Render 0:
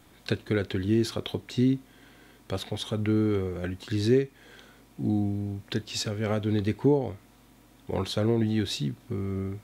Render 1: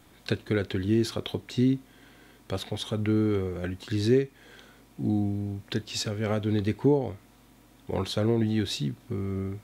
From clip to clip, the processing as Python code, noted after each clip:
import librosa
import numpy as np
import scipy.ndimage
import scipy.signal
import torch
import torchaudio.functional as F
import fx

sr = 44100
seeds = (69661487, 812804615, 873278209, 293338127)

y = x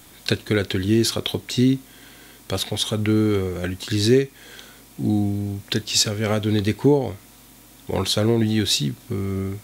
y = fx.high_shelf(x, sr, hz=3400.0, db=11.5)
y = y * 10.0 ** (5.5 / 20.0)